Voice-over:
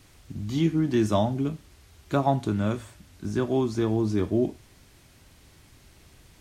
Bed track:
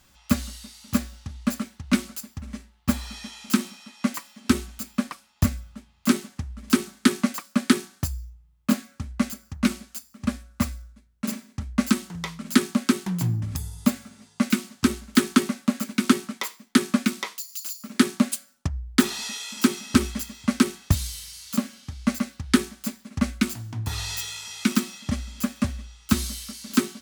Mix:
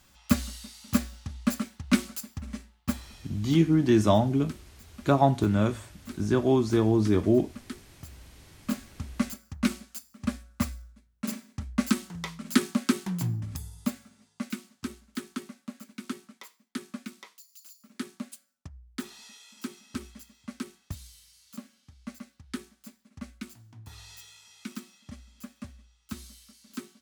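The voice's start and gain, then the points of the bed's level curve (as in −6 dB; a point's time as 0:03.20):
2.95 s, +2.0 dB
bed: 0:02.71 −1.5 dB
0:03.44 −21.5 dB
0:07.83 −21.5 dB
0:09.03 −4 dB
0:13.12 −4 dB
0:15.23 −17.5 dB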